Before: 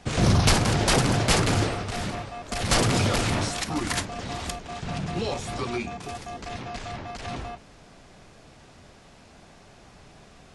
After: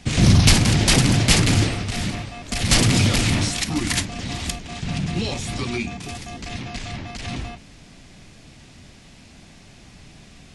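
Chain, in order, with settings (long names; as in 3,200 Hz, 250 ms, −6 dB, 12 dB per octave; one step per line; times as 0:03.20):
flat-topped bell 770 Hz −8.5 dB 2.3 octaves
level +6.5 dB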